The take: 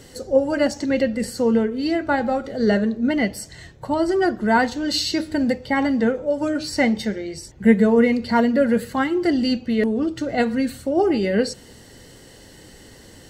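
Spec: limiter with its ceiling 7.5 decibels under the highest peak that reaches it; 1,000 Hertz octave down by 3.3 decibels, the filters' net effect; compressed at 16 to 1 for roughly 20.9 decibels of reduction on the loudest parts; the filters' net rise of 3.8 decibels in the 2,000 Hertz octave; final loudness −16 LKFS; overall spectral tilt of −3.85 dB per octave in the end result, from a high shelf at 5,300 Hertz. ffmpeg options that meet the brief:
ffmpeg -i in.wav -af "equalizer=frequency=1000:width_type=o:gain=-6,equalizer=frequency=2000:width_type=o:gain=5.5,highshelf=frequency=5300:gain=6.5,acompressor=threshold=-30dB:ratio=16,volume=20dB,alimiter=limit=-7.5dB:level=0:latency=1" out.wav

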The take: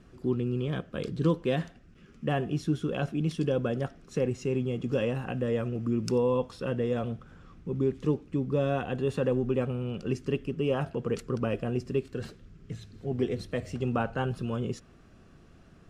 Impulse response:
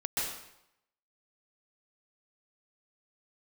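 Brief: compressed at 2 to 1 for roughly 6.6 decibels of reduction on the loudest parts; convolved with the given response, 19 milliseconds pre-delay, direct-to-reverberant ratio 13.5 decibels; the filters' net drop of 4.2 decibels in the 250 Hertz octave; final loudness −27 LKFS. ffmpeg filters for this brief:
-filter_complex "[0:a]equalizer=frequency=250:width_type=o:gain=-5.5,acompressor=threshold=-36dB:ratio=2,asplit=2[link_01][link_02];[1:a]atrim=start_sample=2205,adelay=19[link_03];[link_02][link_03]afir=irnorm=-1:irlink=0,volume=-20dB[link_04];[link_01][link_04]amix=inputs=2:normalize=0,volume=11dB"

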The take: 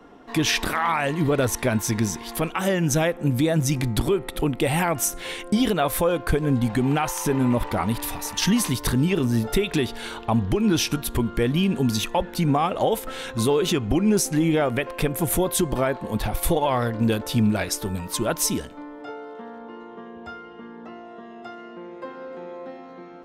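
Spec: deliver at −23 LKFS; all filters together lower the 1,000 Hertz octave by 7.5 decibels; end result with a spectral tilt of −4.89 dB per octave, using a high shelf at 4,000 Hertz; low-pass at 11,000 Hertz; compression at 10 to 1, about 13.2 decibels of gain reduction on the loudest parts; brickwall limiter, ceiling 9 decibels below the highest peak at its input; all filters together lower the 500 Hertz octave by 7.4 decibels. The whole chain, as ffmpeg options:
ffmpeg -i in.wav -af "lowpass=11000,equalizer=frequency=500:width_type=o:gain=-8,equalizer=frequency=1000:width_type=o:gain=-6.5,highshelf=frequency=4000:gain=-8,acompressor=threshold=-31dB:ratio=10,volume=15dB,alimiter=limit=-12dB:level=0:latency=1" out.wav

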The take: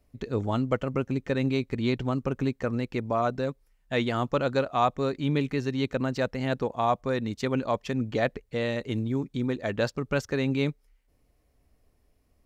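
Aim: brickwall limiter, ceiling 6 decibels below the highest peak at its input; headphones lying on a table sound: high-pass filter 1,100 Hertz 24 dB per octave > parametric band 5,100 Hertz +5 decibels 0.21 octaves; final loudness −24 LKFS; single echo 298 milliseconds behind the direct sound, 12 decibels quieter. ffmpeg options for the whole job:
ffmpeg -i in.wav -af "alimiter=limit=-17dB:level=0:latency=1,highpass=frequency=1100:width=0.5412,highpass=frequency=1100:width=1.3066,equalizer=frequency=5100:width_type=o:width=0.21:gain=5,aecho=1:1:298:0.251,volume=14.5dB" out.wav

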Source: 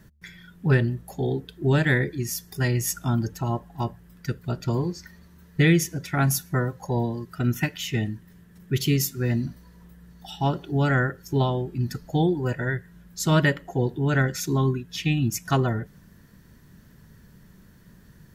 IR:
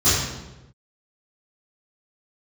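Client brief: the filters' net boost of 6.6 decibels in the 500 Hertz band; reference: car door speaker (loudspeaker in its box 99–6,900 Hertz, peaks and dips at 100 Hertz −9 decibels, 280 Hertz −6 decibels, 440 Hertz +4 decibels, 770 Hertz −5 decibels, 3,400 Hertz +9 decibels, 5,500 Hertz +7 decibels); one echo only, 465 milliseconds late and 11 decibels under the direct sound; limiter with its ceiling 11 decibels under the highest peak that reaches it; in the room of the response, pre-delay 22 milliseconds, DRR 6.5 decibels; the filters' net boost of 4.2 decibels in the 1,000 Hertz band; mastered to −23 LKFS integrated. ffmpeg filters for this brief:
-filter_complex "[0:a]equalizer=frequency=500:width_type=o:gain=6,equalizer=frequency=1000:width_type=o:gain=6,alimiter=limit=-15dB:level=0:latency=1,aecho=1:1:465:0.282,asplit=2[link_01][link_02];[1:a]atrim=start_sample=2205,adelay=22[link_03];[link_02][link_03]afir=irnorm=-1:irlink=0,volume=-25.5dB[link_04];[link_01][link_04]amix=inputs=2:normalize=0,highpass=99,equalizer=frequency=100:width_type=q:width=4:gain=-9,equalizer=frequency=280:width_type=q:width=4:gain=-6,equalizer=frequency=440:width_type=q:width=4:gain=4,equalizer=frequency=770:width_type=q:width=4:gain=-5,equalizer=frequency=3400:width_type=q:width=4:gain=9,equalizer=frequency=5500:width_type=q:width=4:gain=7,lowpass=frequency=6900:width=0.5412,lowpass=frequency=6900:width=1.3066,volume=1dB"

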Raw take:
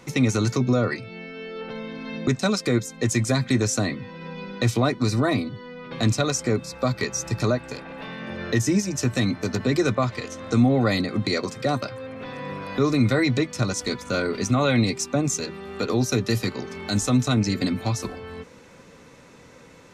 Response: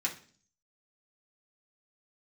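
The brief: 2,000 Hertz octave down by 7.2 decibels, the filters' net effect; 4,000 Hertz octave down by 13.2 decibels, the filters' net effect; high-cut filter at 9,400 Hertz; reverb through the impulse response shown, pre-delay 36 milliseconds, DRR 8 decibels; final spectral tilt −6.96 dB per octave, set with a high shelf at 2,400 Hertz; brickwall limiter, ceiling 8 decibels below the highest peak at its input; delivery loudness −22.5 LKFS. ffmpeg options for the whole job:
-filter_complex "[0:a]lowpass=9400,equalizer=frequency=2000:width_type=o:gain=-3.5,highshelf=frequency=2400:gain=-9,equalizer=frequency=4000:width_type=o:gain=-6.5,alimiter=limit=-16.5dB:level=0:latency=1,asplit=2[link_01][link_02];[1:a]atrim=start_sample=2205,adelay=36[link_03];[link_02][link_03]afir=irnorm=-1:irlink=0,volume=-12.5dB[link_04];[link_01][link_04]amix=inputs=2:normalize=0,volume=5dB"

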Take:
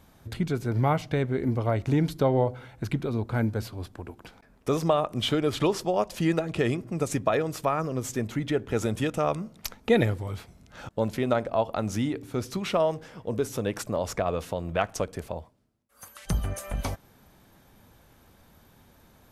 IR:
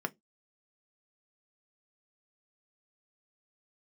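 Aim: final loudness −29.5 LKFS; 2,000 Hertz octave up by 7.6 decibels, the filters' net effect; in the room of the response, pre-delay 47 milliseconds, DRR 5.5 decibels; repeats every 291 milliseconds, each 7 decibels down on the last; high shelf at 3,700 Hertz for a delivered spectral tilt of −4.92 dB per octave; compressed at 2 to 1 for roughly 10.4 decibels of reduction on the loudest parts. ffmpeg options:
-filter_complex "[0:a]equalizer=frequency=2000:width_type=o:gain=8,highshelf=frequency=3700:gain=5,acompressor=threshold=-35dB:ratio=2,aecho=1:1:291|582|873|1164|1455:0.447|0.201|0.0905|0.0407|0.0183,asplit=2[link_01][link_02];[1:a]atrim=start_sample=2205,adelay=47[link_03];[link_02][link_03]afir=irnorm=-1:irlink=0,volume=-9.5dB[link_04];[link_01][link_04]amix=inputs=2:normalize=0,volume=3dB"

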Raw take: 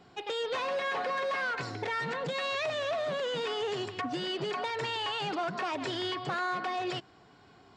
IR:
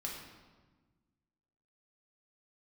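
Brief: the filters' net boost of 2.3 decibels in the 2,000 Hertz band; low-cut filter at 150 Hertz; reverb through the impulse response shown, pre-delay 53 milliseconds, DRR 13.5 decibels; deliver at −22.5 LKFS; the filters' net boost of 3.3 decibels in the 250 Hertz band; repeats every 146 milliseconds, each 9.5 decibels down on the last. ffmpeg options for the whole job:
-filter_complex "[0:a]highpass=150,equalizer=frequency=250:width_type=o:gain=5.5,equalizer=frequency=2000:width_type=o:gain=3,aecho=1:1:146|292|438|584:0.335|0.111|0.0365|0.012,asplit=2[link_01][link_02];[1:a]atrim=start_sample=2205,adelay=53[link_03];[link_02][link_03]afir=irnorm=-1:irlink=0,volume=-14dB[link_04];[link_01][link_04]amix=inputs=2:normalize=0,volume=8dB"

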